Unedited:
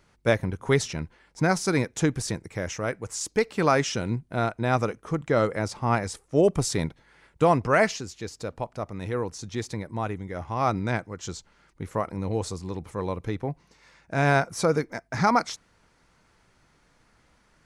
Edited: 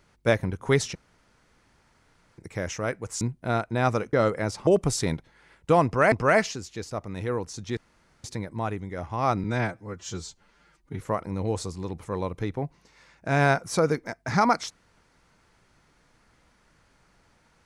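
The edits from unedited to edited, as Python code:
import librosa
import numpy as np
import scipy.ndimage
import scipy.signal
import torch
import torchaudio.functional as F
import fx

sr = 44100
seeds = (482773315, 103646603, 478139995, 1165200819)

y = fx.edit(x, sr, fx.room_tone_fill(start_s=0.95, length_s=1.43),
    fx.cut(start_s=3.21, length_s=0.88),
    fx.cut(start_s=5.01, length_s=0.29),
    fx.cut(start_s=5.84, length_s=0.55),
    fx.repeat(start_s=7.57, length_s=0.27, count=2),
    fx.cut(start_s=8.36, length_s=0.4),
    fx.insert_room_tone(at_s=9.62, length_s=0.47),
    fx.stretch_span(start_s=10.82, length_s=1.04, factor=1.5), tone=tone)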